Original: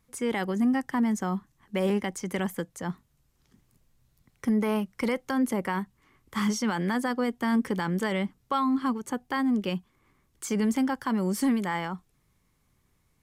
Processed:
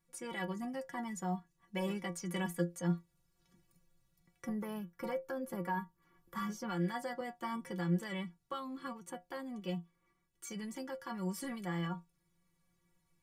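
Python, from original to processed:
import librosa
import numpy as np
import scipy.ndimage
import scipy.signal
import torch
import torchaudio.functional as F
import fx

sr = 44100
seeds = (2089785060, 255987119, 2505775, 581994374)

y = fx.rider(x, sr, range_db=5, speed_s=2.0)
y = fx.stiff_resonator(y, sr, f0_hz=170.0, decay_s=0.21, stiffness=0.008)
y = fx.spec_box(y, sr, start_s=4.44, length_s=2.25, low_hz=1800.0, high_hz=11000.0, gain_db=-7)
y = fx.band_squash(y, sr, depth_pct=40, at=(5.53, 7.21))
y = y * 10.0 ** (1.0 / 20.0)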